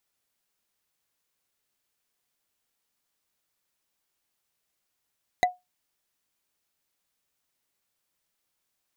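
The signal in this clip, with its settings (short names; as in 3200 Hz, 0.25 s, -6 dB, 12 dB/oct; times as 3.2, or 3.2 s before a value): wood hit bar, lowest mode 725 Hz, decay 0.19 s, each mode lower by 4 dB, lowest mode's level -14 dB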